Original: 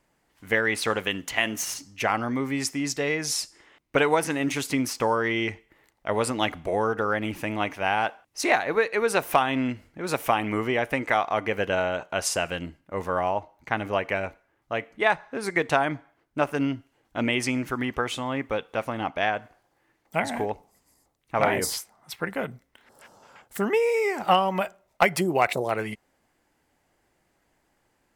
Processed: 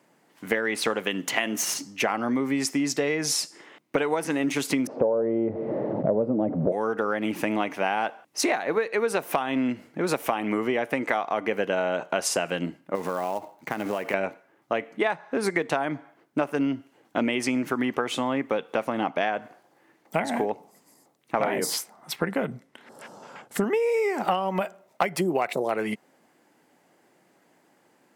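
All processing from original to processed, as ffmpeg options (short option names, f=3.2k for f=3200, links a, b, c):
-filter_complex "[0:a]asettb=1/sr,asplit=3[a][b][c];[a]atrim=end=4.874[d];[b]atrim=start=4.87:end=6.72,asetpts=PTS-STARTPTS,afade=t=in:d=0.004:c=qsin,afade=t=out:st=1.846:d=0.004:c=qsin,aeval=exprs='val(0)+0.5*0.0282*sgn(val(0))':c=same,asubboost=boost=9:cutoff=240,lowpass=f=570:t=q:w=4.3[e];[c]atrim=start=6.716[f];[d][e]acrossfade=d=0.004:c1=hsin:c2=qsin[g];[g][f]acrossfade=d=0.004:c1=qsin:c2=hsin,asettb=1/sr,asplit=3[h][i][j];[h]atrim=end=12.954[k];[i]atrim=start=12.95:end=14.14,asetpts=PTS-STARTPTS,afade=t=in:d=0.004:c=qsin,afade=t=out:st=1.186:d=0.004:c=qsin,acrusher=bits=4:mode=log:mix=0:aa=0.000001,acompressor=threshold=-32dB:ratio=5:attack=3.2:release=140:knee=1:detection=peak[l];[j]atrim=start=14.136[m];[k][l]acrossfade=d=0.004:c1=hsin:c2=qsin[n];[n][m]acrossfade=d=0.004:c1=qsin:c2=hsin,asettb=1/sr,asplit=3[o][p][q];[o]atrim=end=22.164[r];[p]atrim=start=22.16:end=23.64,asetpts=PTS-STARTPTS,afade=t=in:d=0.004:c=qsin,afade=t=out:st=1.476:d=0.004:c=qsin,lowpass=12k,lowshelf=f=120:g=10[s];[q]atrim=start=23.636[t];[r][s]acrossfade=d=0.004:c1=hsin:c2=qsin[u];[u][t]acrossfade=d=0.004:c1=qsin:c2=hsin,highpass=f=150:w=0.5412,highpass=f=150:w=1.3066,equalizer=f=320:w=0.36:g=4.5,acompressor=threshold=-27dB:ratio=6,volume=5dB"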